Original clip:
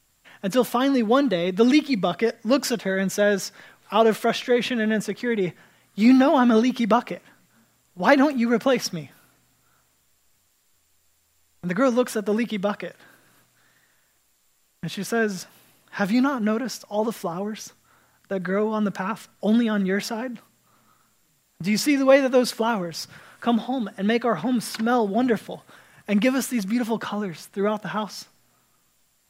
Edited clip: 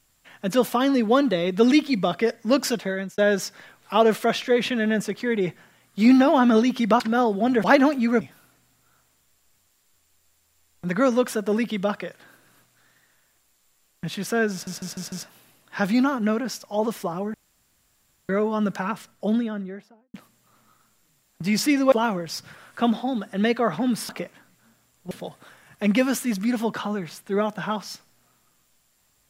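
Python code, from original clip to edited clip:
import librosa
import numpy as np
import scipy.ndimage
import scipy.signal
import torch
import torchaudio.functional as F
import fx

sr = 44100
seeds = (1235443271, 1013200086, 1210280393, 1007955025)

y = fx.studio_fade_out(x, sr, start_s=19.08, length_s=1.26)
y = fx.edit(y, sr, fx.fade_out_span(start_s=2.67, length_s=0.51, curve='qsin'),
    fx.swap(start_s=7.0, length_s=1.02, other_s=24.74, other_length_s=0.64),
    fx.cut(start_s=8.59, length_s=0.42),
    fx.stutter(start_s=15.32, slice_s=0.15, count=5),
    fx.room_tone_fill(start_s=17.54, length_s=0.95),
    fx.cut(start_s=22.12, length_s=0.45), tone=tone)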